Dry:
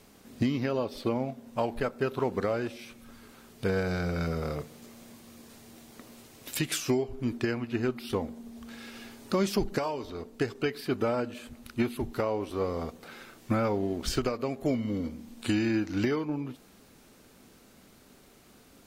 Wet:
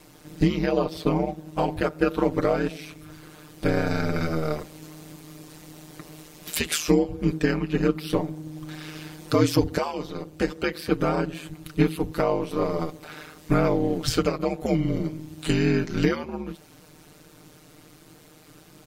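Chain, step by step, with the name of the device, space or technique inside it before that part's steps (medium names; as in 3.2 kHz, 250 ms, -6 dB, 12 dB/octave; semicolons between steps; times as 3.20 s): ring-modulated robot voice (ring modulator 78 Hz; comb 6.6 ms, depth 62%); trim +7 dB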